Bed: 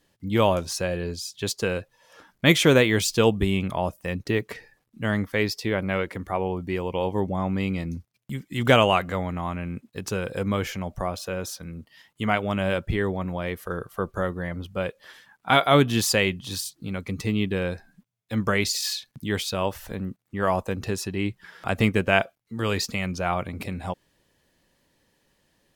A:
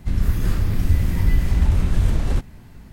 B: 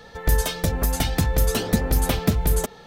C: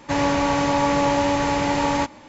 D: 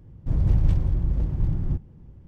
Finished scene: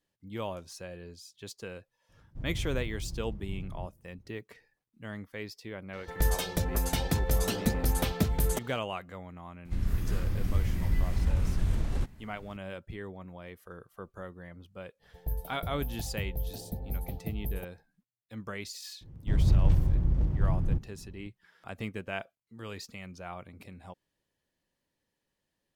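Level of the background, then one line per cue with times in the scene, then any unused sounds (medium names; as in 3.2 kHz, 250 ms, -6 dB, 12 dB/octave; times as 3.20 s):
bed -16 dB
2.09 s: add D -15.5 dB
5.93 s: add B -7 dB
9.65 s: add A -10 dB
14.99 s: add B -13.5 dB, fades 0.05 s + FFT filter 150 Hz 0 dB, 230 Hz -8 dB, 520 Hz -6 dB, 780 Hz -2 dB, 1.2 kHz -28 dB, 2.8 kHz -21 dB, 4.3 kHz -19 dB, 7.2 kHz -26 dB, 13 kHz 0 dB
19.01 s: add D -2.5 dB
not used: C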